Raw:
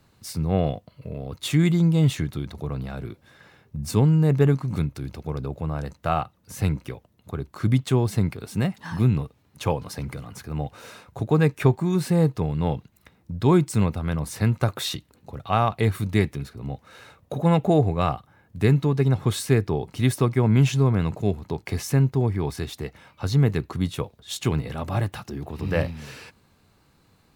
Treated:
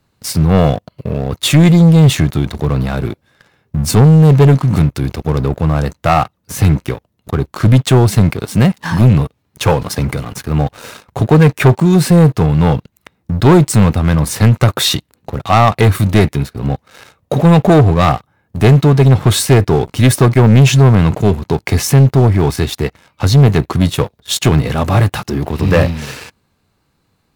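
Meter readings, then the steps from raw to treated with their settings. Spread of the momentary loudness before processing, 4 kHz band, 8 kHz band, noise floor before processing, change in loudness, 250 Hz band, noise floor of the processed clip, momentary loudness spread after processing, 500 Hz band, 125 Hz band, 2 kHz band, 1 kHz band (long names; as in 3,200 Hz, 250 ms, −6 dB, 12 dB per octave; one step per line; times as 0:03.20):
16 LU, +14.5 dB, +15.0 dB, −62 dBFS, +12.0 dB, +11.5 dB, −63 dBFS, 13 LU, +11.0 dB, +12.5 dB, +13.0 dB, +12.5 dB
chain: leveller curve on the samples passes 3
level +4 dB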